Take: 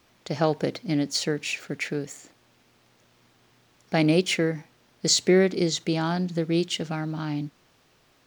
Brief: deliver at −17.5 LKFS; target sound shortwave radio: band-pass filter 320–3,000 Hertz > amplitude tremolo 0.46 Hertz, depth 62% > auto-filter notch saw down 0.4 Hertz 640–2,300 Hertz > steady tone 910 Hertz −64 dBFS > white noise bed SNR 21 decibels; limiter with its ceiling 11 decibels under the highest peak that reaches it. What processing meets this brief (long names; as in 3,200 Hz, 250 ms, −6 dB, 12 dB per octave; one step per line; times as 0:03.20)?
brickwall limiter −19 dBFS
band-pass filter 320–3,000 Hz
amplitude tremolo 0.46 Hz, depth 62%
auto-filter notch saw down 0.4 Hz 640–2,300 Hz
steady tone 910 Hz −64 dBFS
white noise bed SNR 21 dB
level +21 dB